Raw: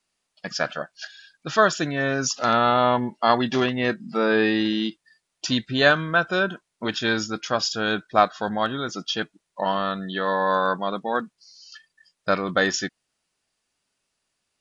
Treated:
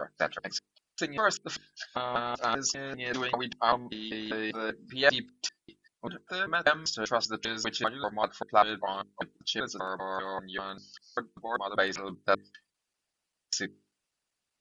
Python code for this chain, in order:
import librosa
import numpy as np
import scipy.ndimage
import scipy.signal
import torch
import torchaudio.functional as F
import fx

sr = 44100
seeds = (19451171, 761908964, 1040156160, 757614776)

y = fx.block_reorder(x, sr, ms=196.0, group=5)
y = fx.hum_notches(y, sr, base_hz=50, count=9)
y = fx.hpss(y, sr, part='harmonic', gain_db=-13)
y = y * 10.0 ** (-3.5 / 20.0)